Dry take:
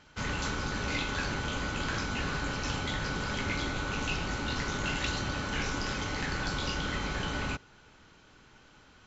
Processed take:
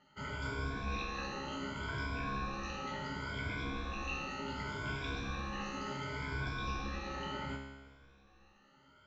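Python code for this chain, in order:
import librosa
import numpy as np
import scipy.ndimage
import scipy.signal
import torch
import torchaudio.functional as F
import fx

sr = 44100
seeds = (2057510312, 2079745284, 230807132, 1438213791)

y = fx.spec_ripple(x, sr, per_octave=1.7, drift_hz=0.69, depth_db=21)
y = fx.dmg_crackle(y, sr, seeds[0], per_s=420.0, level_db=-41.0, at=(3.57, 6.04), fade=0.02)
y = scipy.signal.sosfilt(scipy.signal.butter(2, 6400.0, 'lowpass', fs=sr, output='sos'), y)
y = fx.high_shelf(y, sr, hz=3400.0, db=-8.0)
y = fx.comb_fb(y, sr, f0_hz=68.0, decay_s=1.2, harmonics='all', damping=0.0, mix_pct=90)
y = F.gain(torch.from_numpy(y), 2.5).numpy()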